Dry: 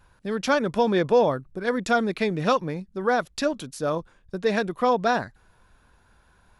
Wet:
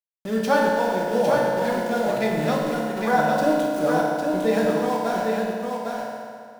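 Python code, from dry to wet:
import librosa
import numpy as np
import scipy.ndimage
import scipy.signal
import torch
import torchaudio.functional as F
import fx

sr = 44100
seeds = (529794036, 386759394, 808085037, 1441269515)

p1 = fx.peak_eq(x, sr, hz=790.0, db=9.0, octaves=0.51)
p2 = fx.rider(p1, sr, range_db=10, speed_s=0.5)
p3 = fx.rotary_switch(p2, sr, hz=1.2, then_hz=7.5, switch_at_s=3.2)
p4 = np.where(np.abs(p3) >= 10.0 ** (-30.5 / 20.0), p3, 0.0)
p5 = p4 + fx.echo_single(p4, sr, ms=805, db=-4.5, dry=0)
p6 = fx.rev_fdn(p5, sr, rt60_s=2.2, lf_ratio=0.95, hf_ratio=0.8, size_ms=10.0, drr_db=-3.5)
y = F.gain(torch.from_numpy(p6), -4.5).numpy()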